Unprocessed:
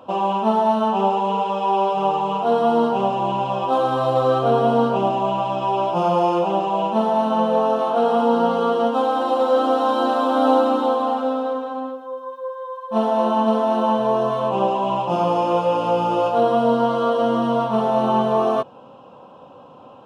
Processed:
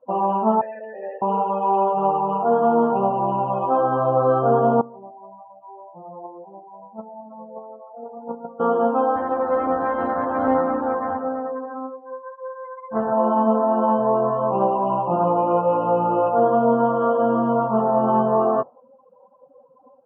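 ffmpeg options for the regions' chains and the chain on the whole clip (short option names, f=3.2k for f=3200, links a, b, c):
-filter_complex "[0:a]asettb=1/sr,asplit=3[a][b][c];[a]atrim=end=0.614[d];[b]atrim=start=0.61:end=1.22,asetpts=PTS-STARTPTS,afade=t=in:d=0.004:c=qsin,afade=t=out:st=0.606:d=0.004:c=qsin,acrusher=bits=4:dc=4:mix=0:aa=0.000001,asplit=3[e][f][g];[e]bandpass=f=530:t=q:w=8,volume=0dB[h];[f]bandpass=f=1.84k:t=q:w=8,volume=-6dB[i];[g]bandpass=f=2.48k:t=q:w=8,volume=-9dB[j];[h][i][j]amix=inputs=3:normalize=0[k];[c]atrim=start=1.216[l];[d][k]acrossfade=d=0.004:c1=hsin:c2=qsin[m];[m][l]acrossfade=d=0.004:c1=qsin:c2=hsin,asettb=1/sr,asplit=3[n][o][p];[n]atrim=end=4.814[q];[o]atrim=start=4.81:end=8.6,asetpts=PTS-STARTPTS,afade=t=in:d=0.004:c=qsin,afade=t=out:st=3.786:d=0.004:c=qsin,agate=range=-25dB:threshold=-14dB:ratio=16:release=100:detection=peak,acontrast=53[r];[p]atrim=start=8.596[s];[q][r]acrossfade=d=0.004:c1=hsin:c2=qsin[t];[t][s]acrossfade=d=0.004:c1=qsin:c2=hsin,asettb=1/sr,asplit=3[u][v][w];[u]atrim=end=9.164[x];[v]atrim=start=9.16:end=13.13,asetpts=PTS-STARTPTS,afade=t=in:d=0.004:c=qsin,afade=t=out:st=3.966:d=0.004:c=qsin,aeval=exprs='if(lt(val(0),0),0.251*val(0),val(0))':c=same,highpass=60[y];[w]atrim=start=13.126[z];[x][y]acrossfade=d=0.004:c1=hsin:c2=qsin[aa];[aa][z]acrossfade=d=0.004:c1=qsin:c2=hsin,afftdn=nr=27:nf=-32,lowpass=f=1.9k:w=0.5412,lowpass=f=1.9k:w=1.3066"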